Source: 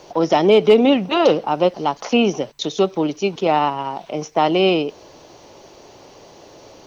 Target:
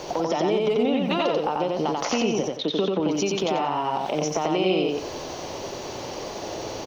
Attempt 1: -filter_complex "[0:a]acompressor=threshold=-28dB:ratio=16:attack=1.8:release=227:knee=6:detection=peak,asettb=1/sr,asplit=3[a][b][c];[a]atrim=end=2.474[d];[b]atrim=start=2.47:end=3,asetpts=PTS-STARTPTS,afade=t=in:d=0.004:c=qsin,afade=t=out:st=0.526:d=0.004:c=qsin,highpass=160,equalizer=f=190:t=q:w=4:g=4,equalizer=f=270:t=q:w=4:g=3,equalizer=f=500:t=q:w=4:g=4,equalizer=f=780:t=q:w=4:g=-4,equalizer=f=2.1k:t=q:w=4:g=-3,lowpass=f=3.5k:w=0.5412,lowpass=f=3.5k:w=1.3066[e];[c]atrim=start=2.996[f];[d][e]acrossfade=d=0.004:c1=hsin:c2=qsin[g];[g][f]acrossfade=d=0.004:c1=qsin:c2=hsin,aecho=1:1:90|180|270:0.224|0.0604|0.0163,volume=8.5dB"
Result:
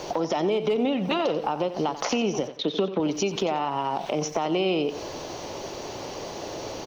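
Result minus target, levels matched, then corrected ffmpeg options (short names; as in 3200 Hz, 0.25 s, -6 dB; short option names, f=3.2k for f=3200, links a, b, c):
echo-to-direct -11 dB
-filter_complex "[0:a]acompressor=threshold=-28dB:ratio=16:attack=1.8:release=227:knee=6:detection=peak,asettb=1/sr,asplit=3[a][b][c];[a]atrim=end=2.474[d];[b]atrim=start=2.47:end=3,asetpts=PTS-STARTPTS,afade=t=in:d=0.004:c=qsin,afade=t=out:st=0.526:d=0.004:c=qsin,highpass=160,equalizer=f=190:t=q:w=4:g=4,equalizer=f=270:t=q:w=4:g=3,equalizer=f=500:t=q:w=4:g=4,equalizer=f=780:t=q:w=4:g=-4,equalizer=f=2.1k:t=q:w=4:g=-3,lowpass=f=3.5k:w=0.5412,lowpass=f=3.5k:w=1.3066[e];[c]atrim=start=2.996[f];[d][e]acrossfade=d=0.004:c1=hsin:c2=qsin[g];[g][f]acrossfade=d=0.004:c1=qsin:c2=hsin,aecho=1:1:90|180|270|360:0.794|0.214|0.0579|0.0156,volume=8.5dB"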